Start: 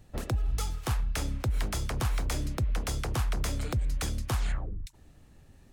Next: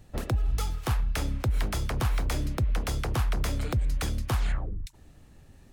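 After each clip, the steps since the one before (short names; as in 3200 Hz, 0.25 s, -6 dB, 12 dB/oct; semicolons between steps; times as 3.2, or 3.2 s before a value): dynamic EQ 7500 Hz, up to -5 dB, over -52 dBFS, Q 0.92; gain +2.5 dB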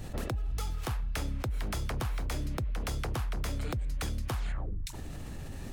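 fast leveller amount 70%; gain -8.5 dB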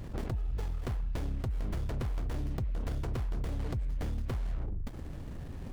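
running maximum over 33 samples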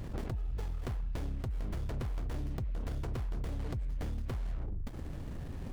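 compressor 2:1, threshold -36 dBFS, peak gain reduction 4.5 dB; gain +1 dB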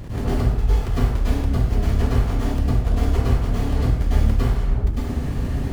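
plate-style reverb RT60 0.81 s, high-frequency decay 0.85×, pre-delay 90 ms, DRR -10 dB; gain +6.5 dB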